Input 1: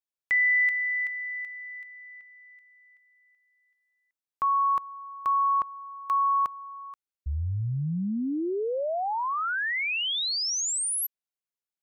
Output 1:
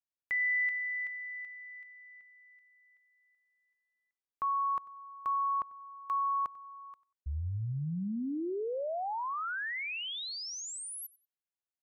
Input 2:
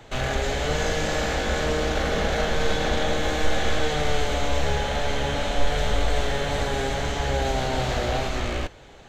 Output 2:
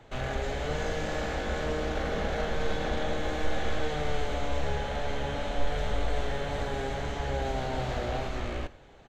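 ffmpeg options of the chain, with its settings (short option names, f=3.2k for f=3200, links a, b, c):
-filter_complex "[0:a]highshelf=f=3.1k:g=-8,asplit=2[a][b];[b]aecho=0:1:94|188:0.0841|0.0202[c];[a][c]amix=inputs=2:normalize=0,volume=-6dB"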